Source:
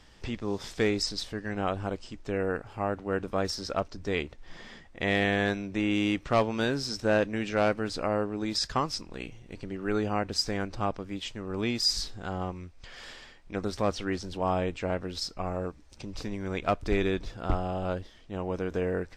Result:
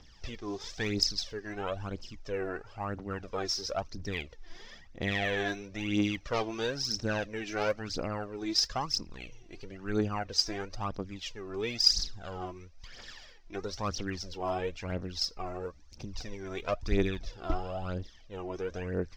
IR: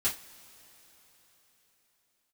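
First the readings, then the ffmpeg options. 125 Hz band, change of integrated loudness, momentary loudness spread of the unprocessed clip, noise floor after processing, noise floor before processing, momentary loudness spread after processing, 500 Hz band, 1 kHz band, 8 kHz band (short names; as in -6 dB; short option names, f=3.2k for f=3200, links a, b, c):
-3.5 dB, -3.0 dB, 14 LU, -53 dBFS, -53 dBFS, 16 LU, -5.5 dB, -5.0 dB, +1.0 dB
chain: -af "highshelf=f=8k:t=q:w=3:g=-12.5,aphaser=in_gain=1:out_gain=1:delay=3.1:decay=0.66:speed=1:type=triangular,volume=-7dB"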